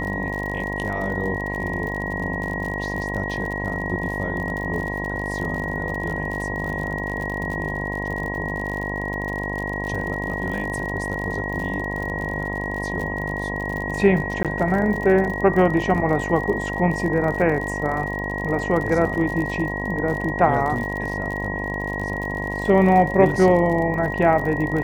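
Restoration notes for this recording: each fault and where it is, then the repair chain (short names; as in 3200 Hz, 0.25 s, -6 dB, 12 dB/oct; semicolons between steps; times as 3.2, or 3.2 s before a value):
buzz 50 Hz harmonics 21 -29 dBFS
crackle 54/s -28 dBFS
tone 1900 Hz -28 dBFS
14.43–14.45 gap 17 ms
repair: de-click; de-hum 50 Hz, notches 21; notch 1900 Hz, Q 30; interpolate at 14.43, 17 ms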